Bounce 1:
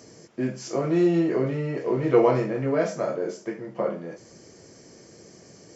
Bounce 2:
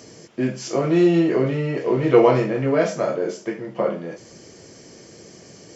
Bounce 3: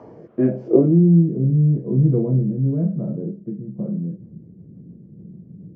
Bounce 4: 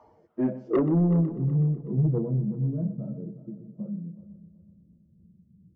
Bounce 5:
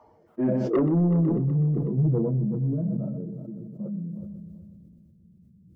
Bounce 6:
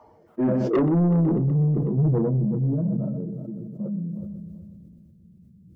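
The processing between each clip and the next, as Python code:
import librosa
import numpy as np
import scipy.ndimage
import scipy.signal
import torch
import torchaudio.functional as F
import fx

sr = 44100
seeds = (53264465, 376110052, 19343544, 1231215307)

y1 = fx.peak_eq(x, sr, hz=3100.0, db=5.5, octaves=0.79)
y1 = F.gain(torch.from_numpy(y1), 4.5).numpy()
y2 = fx.filter_sweep_lowpass(y1, sr, from_hz=920.0, to_hz=180.0, start_s=0.45, end_s=1.0, q=3.0)
y2 = fx.rotary_switch(y2, sr, hz=0.9, then_hz=7.0, switch_at_s=3.72)
y2 = F.gain(torch.from_numpy(y2), 4.5).numpy()
y3 = fx.bin_expand(y2, sr, power=1.5)
y3 = 10.0 ** (-13.5 / 20.0) * np.tanh(y3 / 10.0 ** (-13.5 / 20.0))
y3 = fx.echo_heads(y3, sr, ms=124, heads='first and third', feedback_pct=49, wet_db=-16.0)
y3 = F.gain(torch.from_numpy(y3), -3.5).numpy()
y4 = fx.sustainer(y3, sr, db_per_s=22.0)
y5 = 10.0 ** (-17.5 / 20.0) * np.tanh(y4 / 10.0 ** (-17.5 / 20.0))
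y5 = F.gain(torch.from_numpy(y5), 3.5).numpy()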